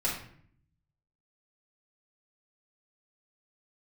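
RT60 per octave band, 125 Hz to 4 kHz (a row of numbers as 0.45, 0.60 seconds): 1.2, 0.90, 0.60, 0.55, 0.55, 0.45 seconds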